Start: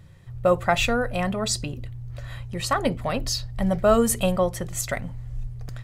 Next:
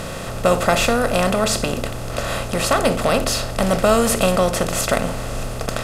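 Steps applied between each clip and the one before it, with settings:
compressor on every frequency bin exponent 0.4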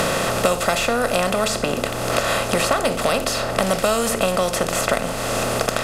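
low-shelf EQ 220 Hz −8 dB
multiband upward and downward compressor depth 100%
level −1 dB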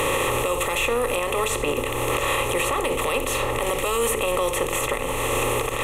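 phaser with its sweep stopped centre 1,000 Hz, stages 8
brickwall limiter −17 dBFS, peak gain reduction 10.5 dB
level +4 dB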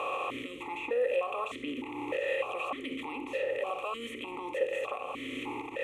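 formant filter that steps through the vowels 3.3 Hz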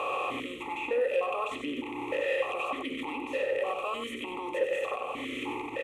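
in parallel at −10.5 dB: soft clipping −28.5 dBFS, distortion −13 dB
on the sum: single-tap delay 97 ms −7.5 dB

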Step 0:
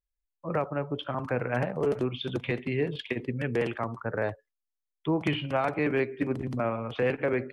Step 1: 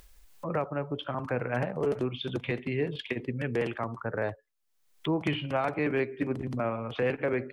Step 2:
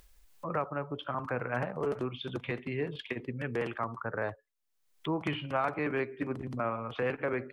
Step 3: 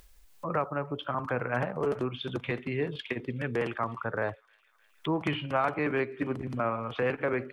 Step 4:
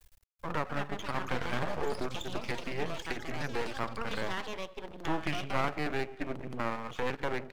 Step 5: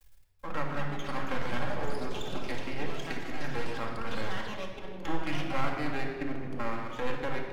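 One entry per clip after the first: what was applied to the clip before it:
upward compression, threshold −29 dBFS; level −1.5 dB
dynamic equaliser 1,200 Hz, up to +7 dB, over −48 dBFS, Q 1.5; level −4.5 dB
delay with a high-pass on its return 308 ms, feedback 75%, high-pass 2,600 Hz, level −21.5 dB; level +3 dB
half-wave rectification; delay with pitch and tempo change per echo 386 ms, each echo +6 semitones, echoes 3, each echo −6 dB
rectangular room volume 2,200 cubic metres, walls mixed, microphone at 2.2 metres; level −3.5 dB

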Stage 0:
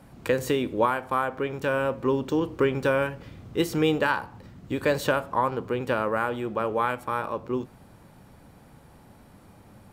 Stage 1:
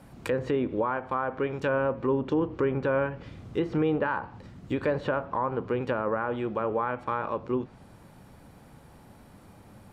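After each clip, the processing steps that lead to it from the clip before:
treble cut that deepens with the level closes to 1,600 Hz, closed at −22 dBFS
brickwall limiter −17.5 dBFS, peak gain reduction 8 dB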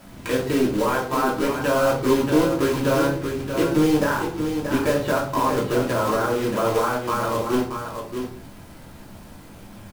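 log-companded quantiser 4 bits
single-tap delay 630 ms −7 dB
rectangular room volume 270 cubic metres, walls furnished, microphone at 2.9 metres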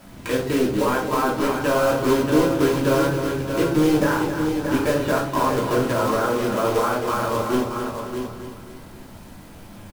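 repeating echo 267 ms, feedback 46%, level −8.5 dB

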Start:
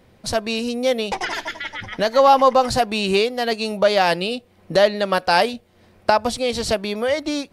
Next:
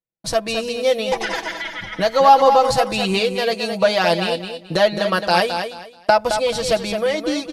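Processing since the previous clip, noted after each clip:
noise gate −43 dBFS, range −45 dB
comb filter 6.1 ms, depth 69%
on a send: repeating echo 216 ms, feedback 24%, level −7.5 dB
on the sum: level −1 dB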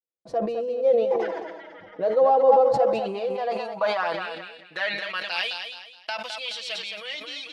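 pitch vibrato 0.38 Hz 53 cents
band-pass filter sweep 480 Hz → 3,000 Hz, 0:02.67–0:05.54
level that may fall only so fast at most 48 dB per second
level −1.5 dB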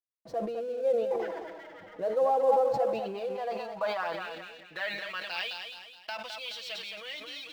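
mu-law and A-law mismatch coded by mu
linearly interpolated sample-rate reduction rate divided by 2×
level −7.5 dB

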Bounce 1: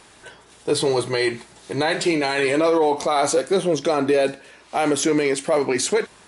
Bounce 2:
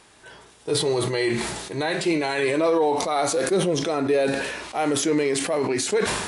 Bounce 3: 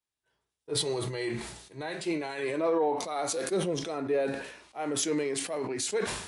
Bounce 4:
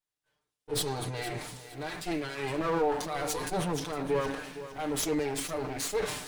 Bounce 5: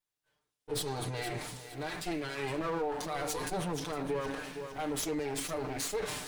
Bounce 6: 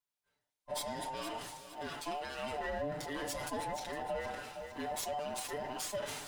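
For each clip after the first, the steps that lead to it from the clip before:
harmonic and percussive parts rebalanced harmonic +5 dB; level that may fall only so fast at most 40 dB per second; level −7 dB
multiband upward and downward expander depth 100%; level −8.5 dB
lower of the sound and its delayed copy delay 6.7 ms; feedback echo at a low word length 461 ms, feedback 35%, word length 9 bits, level −13 dB
downward compressor 3 to 1, threshold −32 dBFS, peak gain reduction 7 dB
frequency inversion band by band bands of 1,000 Hz; level −4 dB

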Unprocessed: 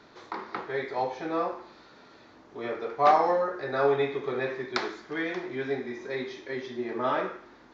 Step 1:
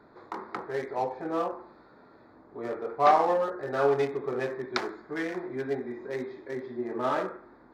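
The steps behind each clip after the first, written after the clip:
adaptive Wiener filter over 15 samples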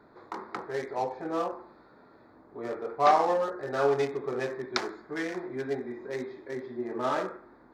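dynamic equaliser 6,400 Hz, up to +6 dB, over −55 dBFS, Q 0.84
level −1 dB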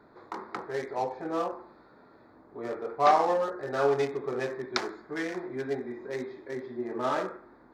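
no processing that can be heard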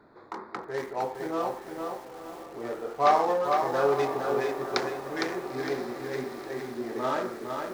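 feedback delay with all-pass diffusion 965 ms, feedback 58%, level −12 dB
feedback echo at a low word length 459 ms, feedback 35%, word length 8 bits, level −4.5 dB

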